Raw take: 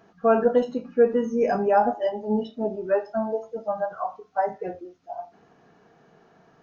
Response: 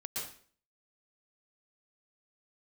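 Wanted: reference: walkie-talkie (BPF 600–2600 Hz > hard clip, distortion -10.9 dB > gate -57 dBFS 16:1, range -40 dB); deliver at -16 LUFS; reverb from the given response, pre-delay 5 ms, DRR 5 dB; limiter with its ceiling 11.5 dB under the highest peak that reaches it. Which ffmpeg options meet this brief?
-filter_complex "[0:a]alimiter=limit=-20dB:level=0:latency=1,asplit=2[a][b];[1:a]atrim=start_sample=2205,adelay=5[c];[b][c]afir=irnorm=-1:irlink=0,volume=-6dB[d];[a][d]amix=inputs=2:normalize=0,highpass=600,lowpass=2.6k,asoftclip=type=hard:threshold=-28.5dB,agate=range=-40dB:threshold=-57dB:ratio=16,volume=19dB"

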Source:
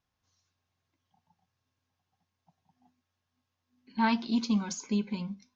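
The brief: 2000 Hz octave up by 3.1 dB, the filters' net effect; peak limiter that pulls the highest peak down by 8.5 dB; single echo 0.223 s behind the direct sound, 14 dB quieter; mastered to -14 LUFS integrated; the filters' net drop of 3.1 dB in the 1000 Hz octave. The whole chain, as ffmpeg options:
-af "equalizer=f=1k:t=o:g=-4.5,equalizer=f=2k:t=o:g=6,alimiter=limit=-23dB:level=0:latency=1,aecho=1:1:223:0.2,volume=19.5dB"

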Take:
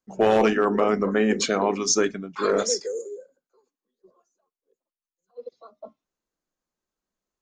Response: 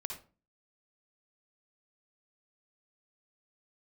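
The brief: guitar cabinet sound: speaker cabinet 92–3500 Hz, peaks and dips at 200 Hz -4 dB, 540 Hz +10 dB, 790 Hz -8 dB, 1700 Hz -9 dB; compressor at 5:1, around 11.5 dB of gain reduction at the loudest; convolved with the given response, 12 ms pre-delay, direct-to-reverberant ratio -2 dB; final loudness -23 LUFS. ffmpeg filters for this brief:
-filter_complex "[0:a]acompressor=threshold=-29dB:ratio=5,asplit=2[a][b];[1:a]atrim=start_sample=2205,adelay=12[c];[b][c]afir=irnorm=-1:irlink=0,volume=2.5dB[d];[a][d]amix=inputs=2:normalize=0,highpass=92,equalizer=f=200:t=q:w=4:g=-4,equalizer=f=540:t=q:w=4:g=10,equalizer=f=790:t=q:w=4:g=-8,equalizer=f=1.7k:t=q:w=4:g=-9,lowpass=f=3.5k:w=0.5412,lowpass=f=3.5k:w=1.3066,volume=5dB"

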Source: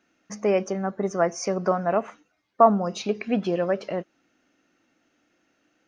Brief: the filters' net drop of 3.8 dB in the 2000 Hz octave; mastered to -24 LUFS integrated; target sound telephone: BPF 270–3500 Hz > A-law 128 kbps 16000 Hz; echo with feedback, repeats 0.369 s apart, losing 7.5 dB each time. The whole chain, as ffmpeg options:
-af "highpass=270,lowpass=3.5k,equalizer=f=2k:t=o:g=-4.5,aecho=1:1:369|738|1107|1476|1845:0.422|0.177|0.0744|0.0312|0.0131,volume=1.5dB" -ar 16000 -c:a pcm_alaw

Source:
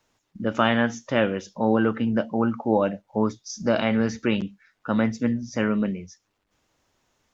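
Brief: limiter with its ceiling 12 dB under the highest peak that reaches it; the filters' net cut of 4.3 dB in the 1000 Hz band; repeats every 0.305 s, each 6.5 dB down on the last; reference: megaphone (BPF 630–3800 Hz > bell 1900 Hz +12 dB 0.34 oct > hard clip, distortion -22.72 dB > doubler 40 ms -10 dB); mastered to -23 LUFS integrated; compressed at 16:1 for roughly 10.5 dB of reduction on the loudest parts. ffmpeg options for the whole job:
-filter_complex "[0:a]equalizer=f=1k:t=o:g=-5.5,acompressor=threshold=-27dB:ratio=16,alimiter=level_in=3.5dB:limit=-24dB:level=0:latency=1,volume=-3.5dB,highpass=630,lowpass=3.8k,equalizer=f=1.9k:t=o:w=0.34:g=12,aecho=1:1:305|610|915|1220|1525|1830:0.473|0.222|0.105|0.0491|0.0231|0.0109,asoftclip=type=hard:threshold=-31.5dB,asplit=2[a][b];[b]adelay=40,volume=-10dB[c];[a][c]amix=inputs=2:normalize=0,volume=20dB"

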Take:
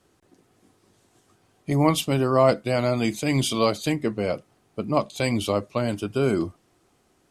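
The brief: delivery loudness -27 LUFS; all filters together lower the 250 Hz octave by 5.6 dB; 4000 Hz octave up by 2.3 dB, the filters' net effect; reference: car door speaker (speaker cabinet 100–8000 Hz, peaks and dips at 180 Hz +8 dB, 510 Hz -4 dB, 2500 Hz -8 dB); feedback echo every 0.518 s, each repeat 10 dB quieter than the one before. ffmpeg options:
-af "highpass=100,equalizer=f=180:t=q:w=4:g=8,equalizer=f=510:t=q:w=4:g=-4,equalizer=f=2.5k:t=q:w=4:g=-8,lowpass=f=8k:w=0.5412,lowpass=f=8k:w=1.3066,equalizer=f=250:t=o:g=-9,equalizer=f=4k:t=o:g=4.5,aecho=1:1:518|1036|1554|2072:0.316|0.101|0.0324|0.0104,volume=-0.5dB"

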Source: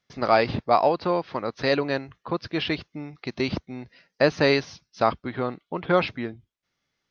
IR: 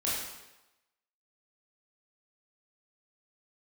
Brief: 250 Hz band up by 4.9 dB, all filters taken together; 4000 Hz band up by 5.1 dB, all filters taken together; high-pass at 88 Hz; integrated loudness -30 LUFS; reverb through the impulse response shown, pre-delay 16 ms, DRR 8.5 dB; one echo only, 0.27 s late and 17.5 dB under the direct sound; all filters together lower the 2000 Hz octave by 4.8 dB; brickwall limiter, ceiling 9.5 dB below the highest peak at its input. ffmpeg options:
-filter_complex "[0:a]highpass=88,equalizer=f=250:t=o:g=6.5,equalizer=f=2k:t=o:g=-8.5,equalizer=f=4k:t=o:g=8,alimiter=limit=-13dB:level=0:latency=1,aecho=1:1:270:0.133,asplit=2[a][b];[1:a]atrim=start_sample=2205,adelay=16[c];[b][c]afir=irnorm=-1:irlink=0,volume=-15.5dB[d];[a][d]amix=inputs=2:normalize=0,volume=-3dB"

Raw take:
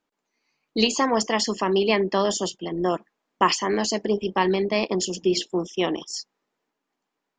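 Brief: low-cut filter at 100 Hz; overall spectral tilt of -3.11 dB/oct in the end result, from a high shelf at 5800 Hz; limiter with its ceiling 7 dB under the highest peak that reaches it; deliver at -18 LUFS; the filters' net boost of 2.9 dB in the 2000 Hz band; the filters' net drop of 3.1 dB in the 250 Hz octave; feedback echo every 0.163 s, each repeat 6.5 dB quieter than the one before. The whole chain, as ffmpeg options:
-af "highpass=100,equalizer=f=250:t=o:g=-4.5,equalizer=f=2k:t=o:g=4,highshelf=f=5.8k:g=-3.5,alimiter=limit=-13dB:level=0:latency=1,aecho=1:1:163|326|489|652|815|978:0.473|0.222|0.105|0.0491|0.0231|0.0109,volume=7dB"

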